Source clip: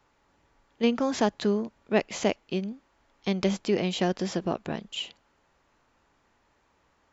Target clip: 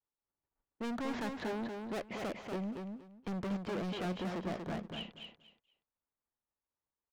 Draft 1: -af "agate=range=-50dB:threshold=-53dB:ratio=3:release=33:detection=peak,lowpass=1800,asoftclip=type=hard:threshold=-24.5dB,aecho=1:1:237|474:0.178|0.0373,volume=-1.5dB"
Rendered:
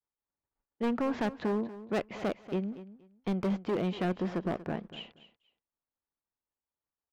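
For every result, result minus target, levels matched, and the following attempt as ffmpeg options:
echo-to-direct −10 dB; hard clipping: distortion −5 dB
-af "agate=range=-50dB:threshold=-53dB:ratio=3:release=33:detection=peak,lowpass=1800,asoftclip=type=hard:threshold=-24.5dB,aecho=1:1:237|474|711:0.562|0.118|0.0248,volume=-1.5dB"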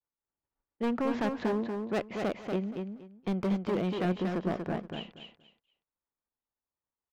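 hard clipping: distortion −5 dB
-af "agate=range=-50dB:threshold=-53dB:ratio=3:release=33:detection=peak,lowpass=1800,asoftclip=type=hard:threshold=-34.5dB,aecho=1:1:237|474|711:0.562|0.118|0.0248,volume=-1.5dB"

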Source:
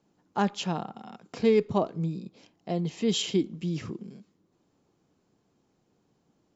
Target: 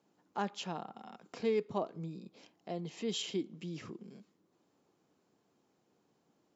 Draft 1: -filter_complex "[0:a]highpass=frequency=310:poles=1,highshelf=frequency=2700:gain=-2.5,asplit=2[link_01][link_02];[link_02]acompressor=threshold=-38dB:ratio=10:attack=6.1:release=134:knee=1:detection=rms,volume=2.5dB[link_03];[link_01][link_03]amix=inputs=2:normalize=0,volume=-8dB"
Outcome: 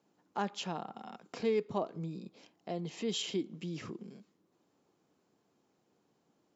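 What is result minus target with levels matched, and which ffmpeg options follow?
downward compressor: peak gain reduction −8 dB
-filter_complex "[0:a]highpass=frequency=310:poles=1,highshelf=frequency=2700:gain=-2.5,asplit=2[link_01][link_02];[link_02]acompressor=threshold=-47dB:ratio=10:attack=6.1:release=134:knee=1:detection=rms,volume=2.5dB[link_03];[link_01][link_03]amix=inputs=2:normalize=0,volume=-8dB"

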